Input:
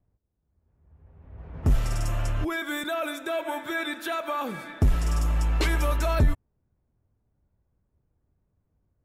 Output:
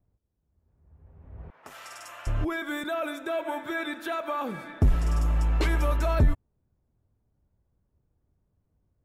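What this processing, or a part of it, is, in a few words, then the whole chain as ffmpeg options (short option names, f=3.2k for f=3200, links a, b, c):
behind a face mask: -filter_complex "[0:a]asettb=1/sr,asplit=3[a][b][c];[a]atrim=end=1.504[d];[b]atrim=start=1.5:end=2.27,asetpts=PTS-STARTPTS,afade=t=in:d=0.004:c=qsin,afade=t=out:st=0.766:d=0.004:c=qsin,highpass=1.1k[e];[c]atrim=start=2.266[f];[d][e]acrossfade=d=0.004:c1=hsin:c2=qsin[g];[g][f]acrossfade=d=0.004:c1=qsin:c2=hsin,highshelf=f=2.4k:g=-7"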